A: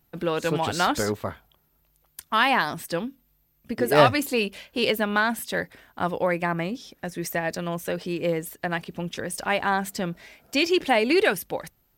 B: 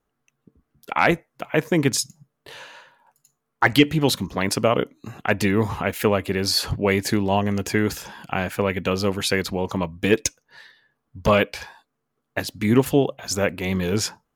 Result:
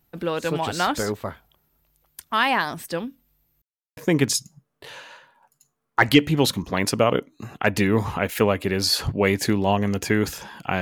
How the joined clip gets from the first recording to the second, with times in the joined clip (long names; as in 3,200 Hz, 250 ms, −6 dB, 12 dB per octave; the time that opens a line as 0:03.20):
A
0:03.62–0:03.97: silence
0:03.97: continue with B from 0:01.61